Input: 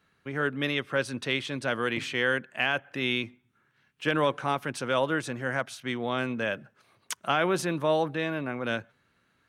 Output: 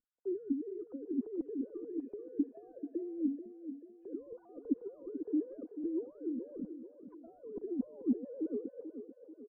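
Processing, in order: formants replaced by sine waves; comb 4.1 ms, depth 56%; peak limiter -22 dBFS, peak gain reduction 11 dB; compressor with a negative ratio -39 dBFS, ratio -1; four-pole ladder low-pass 410 Hz, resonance 30%; tilt EQ -2.5 dB/octave; thinning echo 437 ms, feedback 55%, high-pass 190 Hz, level -9 dB; trim +5 dB

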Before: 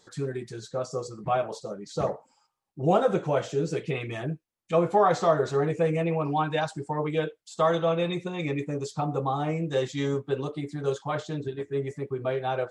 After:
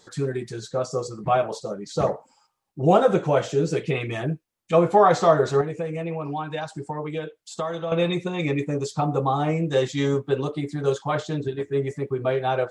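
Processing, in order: 5.61–7.92 s: compression 3:1, threshold -34 dBFS, peak gain reduction 12 dB; trim +5 dB

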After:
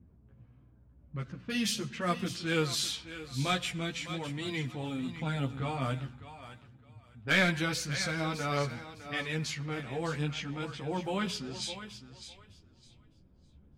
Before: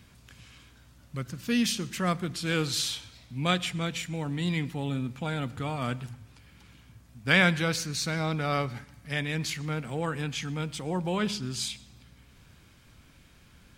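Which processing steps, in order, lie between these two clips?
hard clipper -13.5 dBFS, distortion -20 dB; level-controlled noise filter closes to 410 Hz, open at -26.5 dBFS; on a send: thinning echo 608 ms, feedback 22%, high-pass 320 Hz, level -11 dB; on the sum: chorus voices 2, 0.44 Hz, delay 12 ms, depth 3.5 ms

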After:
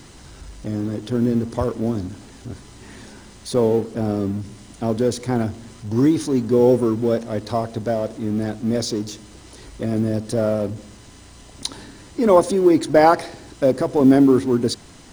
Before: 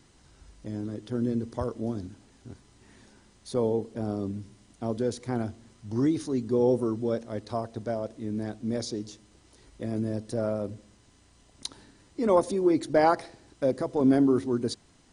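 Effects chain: companding laws mixed up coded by mu; trim +8 dB

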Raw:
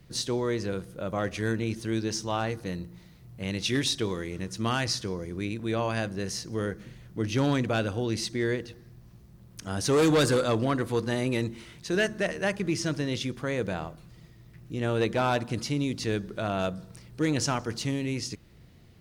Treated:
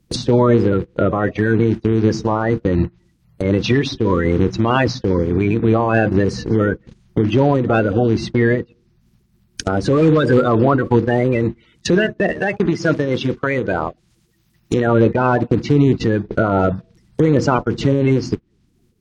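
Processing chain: coarse spectral quantiser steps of 30 dB; dynamic bell 2 kHz, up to -3 dB, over -41 dBFS, Q 0.89; compression 10:1, threshold -35 dBFS, peak gain reduction 15 dB; gate -41 dBFS, range -31 dB; 12.28–14.87 s: tilt EQ +1.5 dB/octave; low-pass that closes with the level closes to 2 kHz, closed at -39.5 dBFS; loudness maximiser +31.5 dB; random flutter of the level, depth 60%; trim -2.5 dB

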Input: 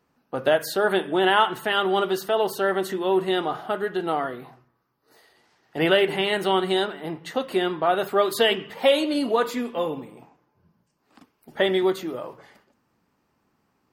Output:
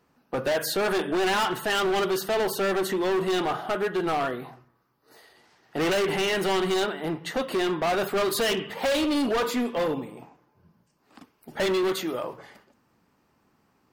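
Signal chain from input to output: 11.84–12.24 s: tilt shelf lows -3.5 dB, about 800 Hz; overload inside the chain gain 25 dB; trim +3 dB

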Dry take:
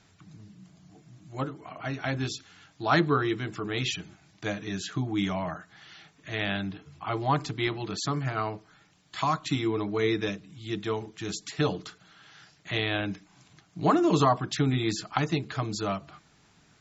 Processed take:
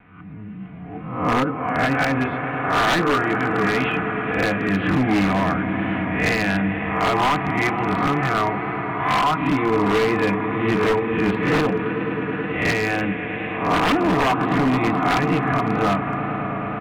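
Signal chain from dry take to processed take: reverse spectral sustain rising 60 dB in 0.63 s; recorder AGC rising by 12 dB/s; steep low-pass 2.6 kHz 48 dB/octave; comb 4.1 ms, depth 48%; echo with a slow build-up 107 ms, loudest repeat 5, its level -15 dB; in parallel at -3 dB: compression 8:1, threshold -33 dBFS, peak gain reduction 18.5 dB; on the sum: peaking EQ 89 Hz +5 dB 1.1 oct; vibrato 2.1 Hz 36 cents; bass shelf 190 Hz -3 dB; wavefolder -15.5 dBFS; trim +3 dB

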